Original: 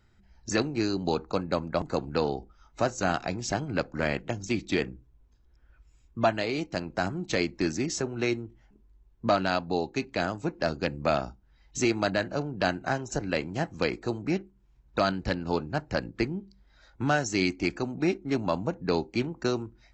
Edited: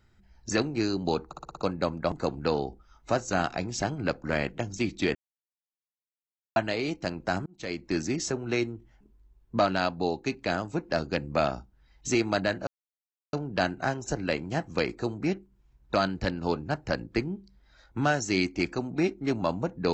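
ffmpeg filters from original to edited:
-filter_complex "[0:a]asplit=10[a][b][c][d][e][f][g][h][i][j];[a]atrim=end=1.332[k];[b]atrim=start=1.268:end=1.332[l];[c]atrim=start=1.268:end=1.332[m];[d]atrim=start=1.268:end=1.332[n];[e]atrim=start=1.268:end=1.332[o];[f]atrim=start=1.268:end=4.85,asetpts=PTS-STARTPTS,afade=t=out:st=3.578:d=0.004:c=hsin[p];[g]atrim=start=4.85:end=6.26,asetpts=PTS-STARTPTS,volume=0[q];[h]atrim=start=6.26:end=7.16,asetpts=PTS-STARTPTS,afade=t=in:d=0.004:c=hsin,afade=t=out:st=0.896:d=0.004:c=hsin[r];[i]atrim=start=7.16:end=12.37,asetpts=PTS-STARTPTS,afade=t=in:d=0.55,afade=t=out:st=5.206:d=0.004:c=hsin,apad=pad_dur=0.66[s];[j]atrim=start=12.37,asetpts=PTS-STARTPTS,afade=t=in:d=0.004:c=hsin[t];[k][l]acrossfade=d=0.004:c1=hsin:c2=hsin[u];[u][m]acrossfade=d=0.004:c1=hsin:c2=hsin[v];[v][n]acrossfade=d=0.004:c1=hsin:c2=hsin[w];[w][o]acrossfade=d=0.004:c1=hsin:c2=hsin[x];[p][q][r][s][t]concat=n=5:v=0:a=1[y];[x][y]acrossfade=d=0.004:c1=hsin:c2=hsin"

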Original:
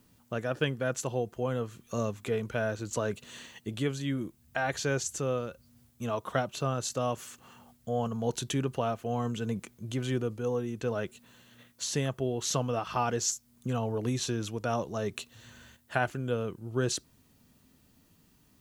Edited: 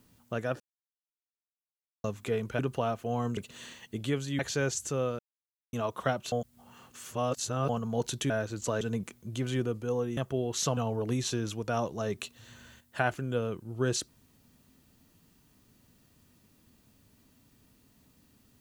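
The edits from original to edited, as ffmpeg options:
-filter_complex "[0:a]asplit=14[a][b][c][d][e][f][g][h][i][j][k][l][m][n];[a]atrim=end=0.6,asetpts=PTS-STARTPTS,afade=t=out:st=0.596:d=0.004:c=hsin[o];[b]atrim=start=0.6:end=2.04,asetpts=PTS-STARTPTS,volume=0[p];[c]atrim=start=2.04:end=2.592,asetpts=PTS-STARTPTS,afade=t=in:d=0.004:c=hsin[q];[d]atrim=start=8.588:end=9.372[r];[e]atrim=start=3.098:end=4.122[s];[f]atrim=start=4.678:end=5.48,asetpts=PTS-STARTPTS,afade=t=out:st=0.798:d=0.004:c=hsin[t];[g]atrim=start=5.48:end=6.02,asetpts=PTS-STARTPTS,volume=0[u];[h]atrim=start=6.02:end=6.612,asetpts=PTS-STARTPTS,afade=t=in:d=0.004:c=hsin[v];[i]atrim=start=6.608:end=7.982,asetpts=PTS-STARTPTS,areverse[w];[j]atrim=start=7.978:end=8.592[x];[k]atrim=start=2.588:end=3.102[y];[l]atrim=start=9.368:end=10.732[z];[m]atrim=start=12.048:end=12.652[aa];[n]atrim=start=13.728[ab];[o][p][q]concat=n=3:v=0:a=1[ac];[ac][r]acrossfade=d=0.004:c1=hsin:c2=hsin[ad];[ad][s]acrossfade=d=0.004:c1=hsin:c2=hsin[ae];[t][u][v]concat=n=3:v=0:a=1[af];[ae][af]acrossfade=d=0.004:c1=hsin:c2=hsin[ag];[ag][w]acrossfade=d=0.004:c1=hsin:c2=hsin[ah];[ah][x]acrossfade=d=0.004:c1=hsin:c2=hsin[ai];[ai][y]acrossfade=d=0.004:c1=hsin:c2=hsin[aj];[aj][z]acrossfade=d=0.004:c1=hsin:c2=hsin[ak];[ak][aa]acrossfade=d=0.004:c1=hsin:c2=hsin[al];[al][ab]acrossfade=d=0.004:c1=hsin:c2=hsin"

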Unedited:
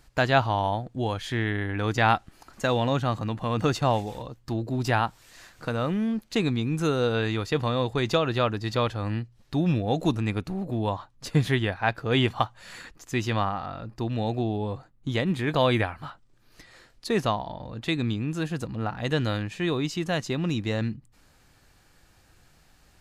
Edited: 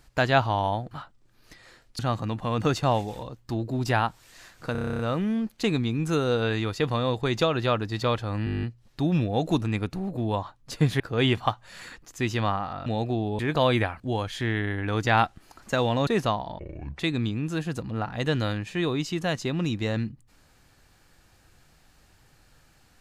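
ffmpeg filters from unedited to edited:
-filter_complex "[0:a]asplit=28[a][b][c][d][e][f][g][h][i][j][k][l][m][n][o][p][q][r][s][t][u][v][w][x][y][z][aa][ab];[a]atrim=end=0.912[ac];[b]atrim=start=15.988:end=17.072[ad];[c]atrim=start=2.978:end=5.742[ae];[d]atrim=start=5.708:end=5.742[af];[e]atrim=start=5.708:end=5.742[ag];[f]atrim=start=5.708:end=5.742[ah];[g]atrim=start=5.708:end=5.742[ai];[h]atrim=start=5.708:end=5.742[aj];[i]atrim=start=5.708:end=5.742[ak];[j]atrim=start=5.708:end=5.742[al];[k]atrim=start=5.708:end=5.742[am];[l]atrim=start=5.708:end=9.192[an];[m]atrim=start=9.168:end=9.192[ao];[n]atrim=start=9.168:end=9.192[ap];[o]atrim=start=9.168:end=9.192[aq];[p]atrim=start=9.168:end=9.192[ar];[q]atrim=start=9.168:end=9.192[as];[r]atrim=start=9.168:end=9.192[at];[s]atrim=start=9.168:end=9.192[au];[t]atrim=start=9.168:end=9.192[av];[u]atrim=start=9.168:end=11.542[aw];[v]atrim=start=11.928:end=13.792[ax];[w]atrim=start=14.138:end=14.672[ay];[x]atrim=start=15.378:end=15.992[az];[y]atrim=start=0.908:end=2.982[ba];[z]atrim=start=17.068:end=17.594[bb];[aa]atrim=start=17.59:end=17.84,asetpts=PTS-STARTPTS,asetrate=27342,aresample=44100,atrim=end_sample=17782,asetpts=PTS-STARTPTS[bc];[ab]atrim=start=17.836[bd];[ac][ad]acrossfade=d=0.004:c1=hsin:c2=hsin[be];[be][ae]acrossfade=d=0.004:c1=hsin:c2=hsin[bf];[bf][af]acrossfade=d=0.004:c1=hsin:c2=hsin[bg];[bg][ag]acrossfade=d=0.004:c1=hsin:c2=hsin[bh];[bh][ah]acrossfade=d=0.004:c1=hsin:c2=hsin[bi];[bi][ai]acrossfade=d=0.004:c1=hsin:c2=hsin[bj];[bj][aj]acrossfade=d=0.004:c1=hsin:c2=hsin[bk];[bk][ak]acrossfade=d=0.004:c1=hsin:c2=hsin[bl];[bl][al]acrossfade=d=0.004:c1=hsin:c2=hsin[bm];[bm][am]acrossfade=d=0.004:c1=hsin:c2=hsin[bn];[bn][an]acrossfade=d=0.004:c1=hsin:c2=hsin[bo];[bo][ao]acrossfade=d=0.004:c1=hsin:c2=hsin[bp];[bp][ap]acrossfade=d=0.004:c1=hsin:c2=hsin[bq];[bq][aq]acrossfade=d=0.004:c1=hsin:c2=hsin[br];[br][ar]acrossfade=d=0.004:c1=hsin:c2=hsin[bs];[bs][as]acrossfade=d=0.004:c1=hsin:c2=hsin[bt];[bt][at]acrossfade=d=0.004:c1=hsin:c2=hsin[bu];[bu][au]acrossfade=d=0.004:c1=hsin:c2=hsin[bv];[bv][av]acrossfade=d=0.004:c1=hsin:c2=hsin[bw];[bw][aw]acrossfade=d=0.004:c1=hsin:c2=hsin[bx];[bx][ax]acrossfade=d=0.004:c1=hsin:c2=hsin[by];[by][ay]acrossfade=d=0.004:c1=hsin:c2=hsin[bz];[bz][az]acrossfade=d=0.004:c1=hsin:c2=hsin[ca];[ca][ba]acrossfade=d=0.004:c1=hsin:c2=hsin[cb];[cb][bb]acrossfade=d=0.004:c1=hsin:c2=hsin[cc];[cc][bc]acrossfade=d=0.004:c1=hsin:c2=hsin[cd];[cd][bd]acrossfade=d=0.004:c1=hsin:c2=hsin"

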